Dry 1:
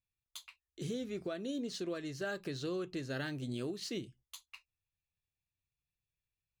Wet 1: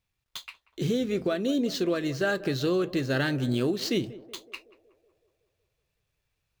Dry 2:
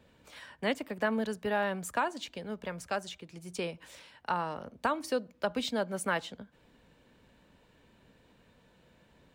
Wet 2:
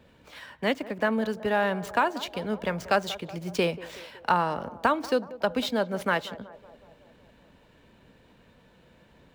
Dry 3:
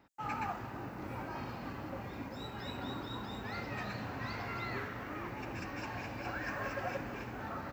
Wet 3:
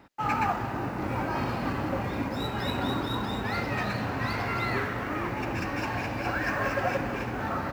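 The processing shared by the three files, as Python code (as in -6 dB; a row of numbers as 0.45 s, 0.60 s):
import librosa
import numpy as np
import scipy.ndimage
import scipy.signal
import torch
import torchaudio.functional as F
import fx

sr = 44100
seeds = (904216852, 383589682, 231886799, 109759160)

y = scipy.ndimage.median_filter(x, 5, mode='constant')
y = fx.echo_banded(y, sr, ms=186, feedback_pct=65, hz=590.0, wet_db=-15.5)
y = fx.rider(y, sr, range_db=10, speed_s=2.0)
y = y * 10.0 ** (-30 / 20.0) / np.sqrt(np.mean(np.square(y)))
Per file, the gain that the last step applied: +12.5 dB, +6.0 dB, +10.5 dB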